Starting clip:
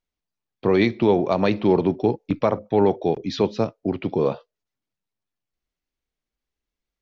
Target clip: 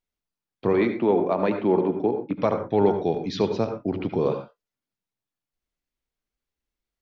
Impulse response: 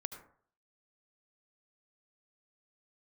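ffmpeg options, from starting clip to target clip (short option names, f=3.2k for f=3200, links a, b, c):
-filter_complex "[0:a]asettb=1/sr,asplit=3[a][b][c];[a]atrim=end=0.734[d];[b]atrim=start=0.73:end=2.39,asetpts=PTS-STARTPTS,afade=t=in:d=0.004:c=qsin,afade=t=out:st=1.656:d=0.004:c=qsin,acrossover=split=170 2500:gain=0.178 1 0.178[e][f][g];[e][f][g]amix=inputs=3:normalize=0[h];[c]atrim=start=2.386[i];[d][h]acrossfade=d=0.004:c1=hsin:c2=qsin[j];[j][i]acrossfade=d=0.004:c1=qsin:c2=hsin[k];[1:a]atrim=start_sample=2205,atrim=end_sample=6174[l];[k][l]afir=irnorm=-1:irlink=0"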